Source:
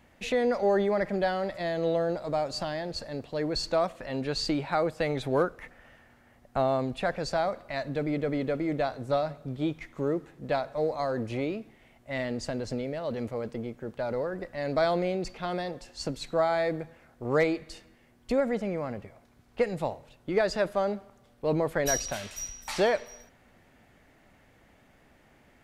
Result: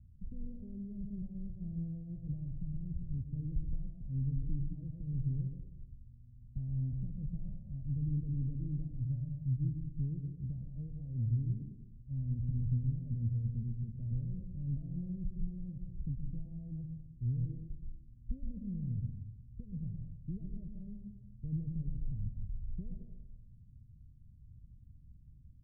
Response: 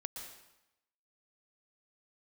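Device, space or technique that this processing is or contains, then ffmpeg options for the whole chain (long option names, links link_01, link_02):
club heard from the street: -filter_complex "[0:a]alimiter=limit=-22dB:level=0:latency=1:release=329,lowpass=frequency=130:width=0.5412,lowpass=frequency=130:width=1.3066[link_01];[1:a]atrim=start_sample=2205[link_02];[link_01][link_02]afir=irnorm=-1:irlink=0,volume=12.5dB"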